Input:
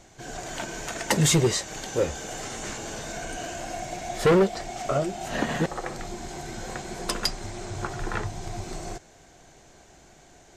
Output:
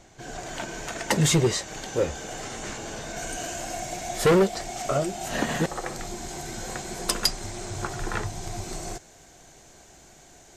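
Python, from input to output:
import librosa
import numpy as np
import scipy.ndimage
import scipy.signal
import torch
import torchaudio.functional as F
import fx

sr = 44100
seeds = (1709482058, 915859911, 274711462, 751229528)

y = fx.high_shelf(x, sr, hz=6300.0, db=fx.steps((0.0, -3.0), (3.16, 9.5)))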